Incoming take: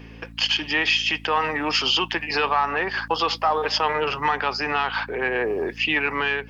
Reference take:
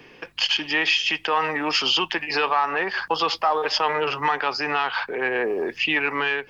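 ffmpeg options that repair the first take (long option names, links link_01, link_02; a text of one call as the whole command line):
ffmpeg -i in.wav -af "bandreject=frequency=55.9:width_type=h:width=4,bandreject=frequency=111.8:width_type=h:width=4,bandreject=frequency=167.7:width_type=h:width=4,bandreject=frequency=223.6:width_type=h:width=4,bandreject=frequency=279.5:width_type=h:width=4" out.wav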